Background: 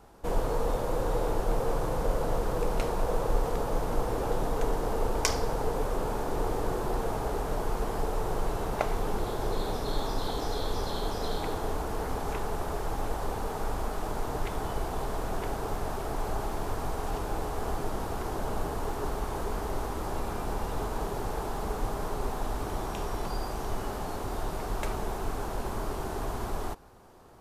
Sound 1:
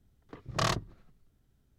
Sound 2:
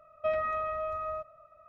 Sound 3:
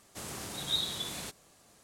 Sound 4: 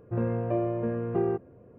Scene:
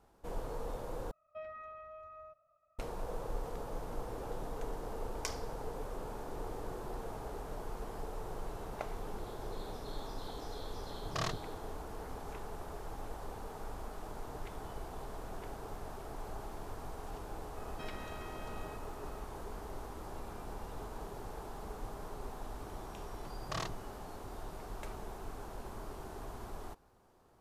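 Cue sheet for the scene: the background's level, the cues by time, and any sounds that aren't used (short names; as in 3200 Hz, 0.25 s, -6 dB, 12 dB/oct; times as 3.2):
background -12 dB
1.11 replace with 2 -16.5 dB
10.57 add 1 -8 dB
17.55 add 2 -14 dB + spectral compressor 4:1
22.93 add 1 -10.5 dB
not used: 3, 4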